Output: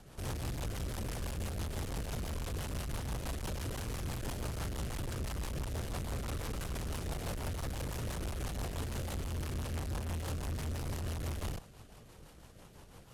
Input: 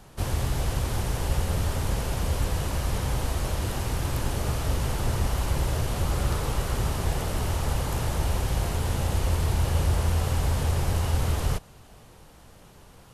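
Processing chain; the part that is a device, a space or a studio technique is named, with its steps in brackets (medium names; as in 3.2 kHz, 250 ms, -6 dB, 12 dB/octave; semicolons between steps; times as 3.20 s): overdriven rotary cabinet (valve stage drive 35 dB, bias 0.65; rotary cabinet horn 6 Hz); trim +1 dB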